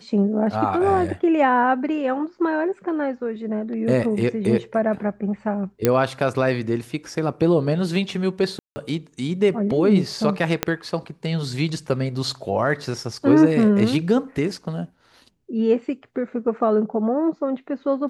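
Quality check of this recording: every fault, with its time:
5.85 s: pop -3 dBFS
8.59–8.76 s: dropout 170 ms
10.63 s: pop -4 dBFS

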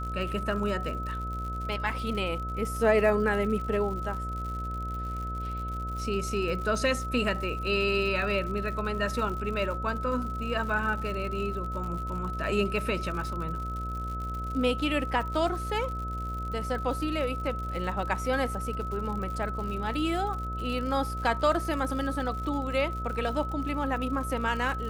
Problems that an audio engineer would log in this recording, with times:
buzz 60 Hz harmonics 12 -35 dBFS
crackle 100 per s -36 dBFS
whine 1.3 kHz -35 dBFS

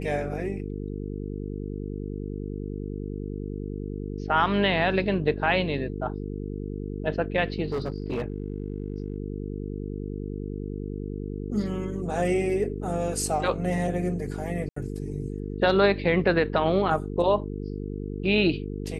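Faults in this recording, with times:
buzz 50 Hz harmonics 9 -33 dBFS
7.72–9.16 s: clipped -24 dBFS
14.69–14.76 s: dropout 74 ms

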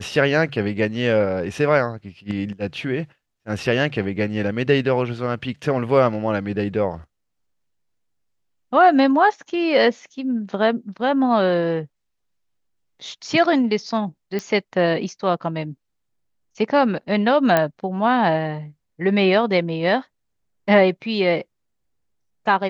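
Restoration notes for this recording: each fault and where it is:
14.39 s: pop -14 dBFS
17.57 s: pop -4 dBFS

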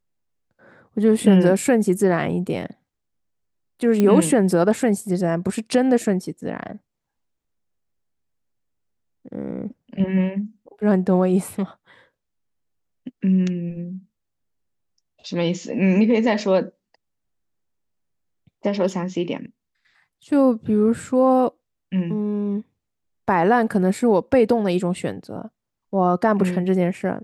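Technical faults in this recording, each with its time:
4.00 s: pop -8 dBFS

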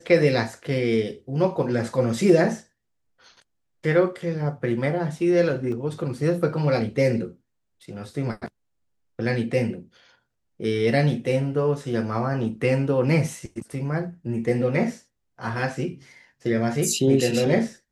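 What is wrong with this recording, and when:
5.72 s: dropout 3 ms

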